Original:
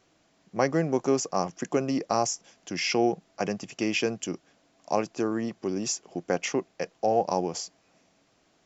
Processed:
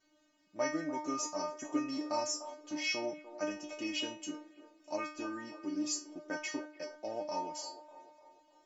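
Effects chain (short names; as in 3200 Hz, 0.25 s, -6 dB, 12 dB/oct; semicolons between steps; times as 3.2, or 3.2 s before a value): metallic resonator 300 Hz, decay 0.42 s, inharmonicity 0.002; band-limited delay 0.298 s, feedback 50%, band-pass 710 Hz, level -11 dB; gain +9 dB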